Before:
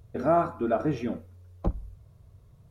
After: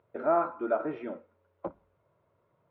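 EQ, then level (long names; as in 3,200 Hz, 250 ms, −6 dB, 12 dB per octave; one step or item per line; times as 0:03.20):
loudspeaker in its box 260–3,100 Hz, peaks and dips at 350 Hz +5 dB, 570 Hz +9 dB, 950 Hz +9 dB, 1,400 Hz +8 dB, 2,100 Hz +4 dB
−8.0 dB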